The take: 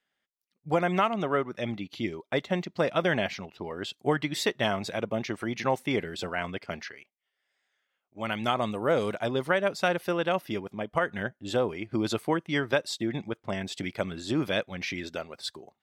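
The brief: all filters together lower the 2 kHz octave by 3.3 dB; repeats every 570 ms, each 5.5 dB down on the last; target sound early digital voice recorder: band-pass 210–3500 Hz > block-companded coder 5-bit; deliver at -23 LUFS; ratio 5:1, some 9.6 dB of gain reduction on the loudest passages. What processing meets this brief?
peaking EQ 2 kHz -4 dB; compression 5:1, threshold -32 dBFS; band-pass 210–3500 Hz; feedback delay 570 ms, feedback 53%, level -5.5 dB; block-companded coder 5-bit; trim +14 dB

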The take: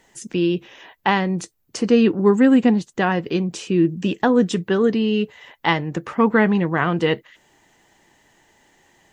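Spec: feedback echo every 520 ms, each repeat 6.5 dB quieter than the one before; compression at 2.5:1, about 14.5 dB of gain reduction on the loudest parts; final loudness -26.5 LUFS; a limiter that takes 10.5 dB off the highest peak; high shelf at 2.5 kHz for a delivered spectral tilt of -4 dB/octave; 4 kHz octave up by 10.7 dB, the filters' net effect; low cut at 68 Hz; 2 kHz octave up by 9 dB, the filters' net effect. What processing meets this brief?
high-pass 68 Hz; peaking EQ 2 kHz +6.5 dB; treble shelf 2.5 kHz +6.5 dB; peaking EQ 4 kHz +6.5 dB; compression 2.5:1, threshold -31 dBFS; peak limiter -19 dBFS; feedback delay 520 ms, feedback 47%, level -6.5 dB; trim +3.5 dB

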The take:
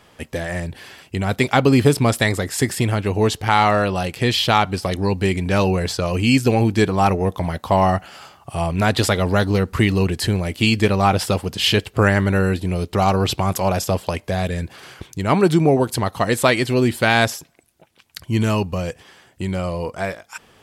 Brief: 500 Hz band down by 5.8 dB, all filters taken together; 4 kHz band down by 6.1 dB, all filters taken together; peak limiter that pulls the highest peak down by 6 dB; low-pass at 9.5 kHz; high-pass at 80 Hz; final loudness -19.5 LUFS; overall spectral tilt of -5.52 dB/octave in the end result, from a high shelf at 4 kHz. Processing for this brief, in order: high-pass 80 Hz; low-pass 9.5 kHz; peaking EQ 500 Hz -7.5 dB; treble shelf 4 kHz -6 dB; peaking EQ 4 kHz -4.5 dB; trim +3.5 dB; peak limiter -6 dBFS

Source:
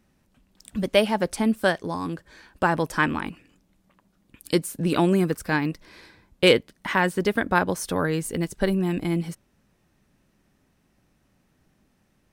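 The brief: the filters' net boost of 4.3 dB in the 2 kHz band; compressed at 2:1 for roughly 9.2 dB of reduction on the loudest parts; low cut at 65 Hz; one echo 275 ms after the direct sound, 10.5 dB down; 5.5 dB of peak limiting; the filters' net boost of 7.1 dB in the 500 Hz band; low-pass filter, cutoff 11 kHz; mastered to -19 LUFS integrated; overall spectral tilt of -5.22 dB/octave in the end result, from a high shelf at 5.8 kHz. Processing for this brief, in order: high-pass 65 Hz; low-pass 11 kHz; peaking EQ 500 Hz +8.5 dB; peaking EQ 2 kHz +4.5 dB; treble shelf 5.8 kHz +4 dB; compression 2:1, threshold -23 dBFS; peak limiter -13.5 dBFS; delay 275 ms -10.5 dB; trim +7.5 dB

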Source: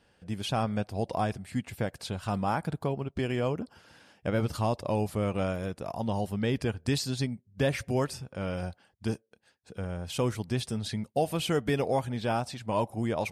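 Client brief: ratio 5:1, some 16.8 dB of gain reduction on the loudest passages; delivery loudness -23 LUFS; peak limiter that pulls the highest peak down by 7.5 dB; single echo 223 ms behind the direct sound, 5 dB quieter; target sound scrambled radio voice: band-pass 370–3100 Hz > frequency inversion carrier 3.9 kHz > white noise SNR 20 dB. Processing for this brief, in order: compression 5:1, threshold -43 dBFS; peak limiter -37.5 dBFS; band-pass 370–3100 Hz; delay 223 ms -5 dB; frequency inversion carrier 3.9 kHz; white noise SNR 20 dB; trim +25 dB

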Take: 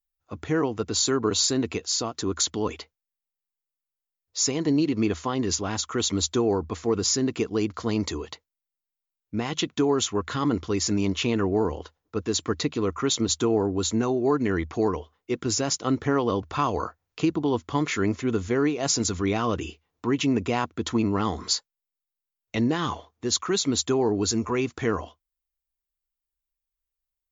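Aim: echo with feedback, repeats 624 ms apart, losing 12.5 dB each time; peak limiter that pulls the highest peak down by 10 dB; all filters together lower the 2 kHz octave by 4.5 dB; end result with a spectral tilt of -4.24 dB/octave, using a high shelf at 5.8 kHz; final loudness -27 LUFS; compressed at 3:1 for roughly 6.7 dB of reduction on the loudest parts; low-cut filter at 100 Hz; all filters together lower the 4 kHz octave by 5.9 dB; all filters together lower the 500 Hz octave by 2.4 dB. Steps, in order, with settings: high-pass 100 Hz; peaking EQ 500 Hz -3 dB; peaking EQ 2 kHz -4 dB; peaking EQ 4 kHz -8.5 dB; treble shelf 5.8 kHz +4 dB; compression 3:1, threshold -29 dBFS; peak limiter -26.5 dBFS; feedback delay 624 ms, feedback 24%, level -12.5 dB; trim +9.5 dB

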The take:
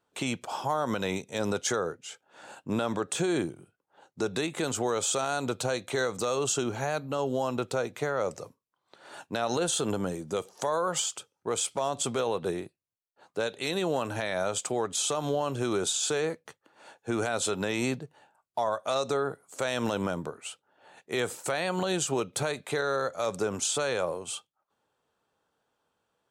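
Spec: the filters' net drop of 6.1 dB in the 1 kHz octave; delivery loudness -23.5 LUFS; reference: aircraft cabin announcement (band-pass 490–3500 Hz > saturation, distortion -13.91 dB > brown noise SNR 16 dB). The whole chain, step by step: band-pass 490–3500 Hz; peaking EQ 1 kHz -8 dB; saturation -30.5 dBFS; brown noise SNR 16 dB; trim +15.5 dB

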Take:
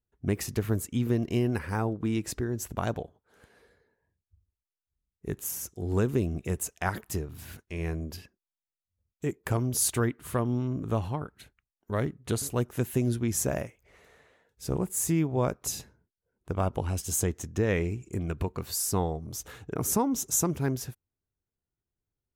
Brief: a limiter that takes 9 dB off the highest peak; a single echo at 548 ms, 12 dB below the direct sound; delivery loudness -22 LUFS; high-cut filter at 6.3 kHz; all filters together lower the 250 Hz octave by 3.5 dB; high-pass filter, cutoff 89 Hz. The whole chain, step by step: high-pass 89 Hz; low-pass 6.3 kHz; peaking EQ 250 Hz -4.5 dB; peak limiter -21 dBFS; delay 548 ms -12 dB; trim +12.5 dB

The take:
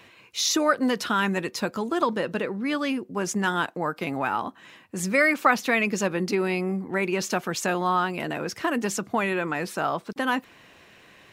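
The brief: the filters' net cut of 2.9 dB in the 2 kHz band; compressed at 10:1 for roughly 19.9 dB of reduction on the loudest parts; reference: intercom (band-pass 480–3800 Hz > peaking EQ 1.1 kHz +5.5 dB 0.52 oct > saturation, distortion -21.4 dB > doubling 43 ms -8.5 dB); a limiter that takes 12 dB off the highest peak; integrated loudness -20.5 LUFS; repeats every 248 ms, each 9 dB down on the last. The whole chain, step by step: peaking EQ 2 kHz -4.5 dB; compression 10:1, threshold -37 dBFS; peak limiter -37.5 dBFS; band-pass 480–3800 Hz; peaking EQ 1.1 kHz +5.5 dB 0.52 oct; feedback delay 248 ms, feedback 35%, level -9 dB; saturation -36.5 dBFS; doubling 43 ms -8.5 dB; trim +28 dB

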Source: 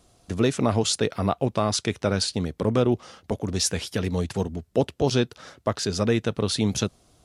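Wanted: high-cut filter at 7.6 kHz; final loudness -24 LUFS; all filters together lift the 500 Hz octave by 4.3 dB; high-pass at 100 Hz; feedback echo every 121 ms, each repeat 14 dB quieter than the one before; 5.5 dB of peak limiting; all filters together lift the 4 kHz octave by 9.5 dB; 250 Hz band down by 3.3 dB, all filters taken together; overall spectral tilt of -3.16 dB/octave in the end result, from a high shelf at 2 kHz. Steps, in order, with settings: high-pass 100 Hz; low-pass 7.6 kHz; peaking EQ 250 Hz -6.5 dB; peaking EQ 500 Hz +6.5 dB; treble shelf 2 kHz +7.5 dB; peaking EQ 4 kHz +4.5 dB; peak limiter -9 dBFS; feedback delay 121 ms, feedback 20%, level -14 dB; trim -1.5 dB

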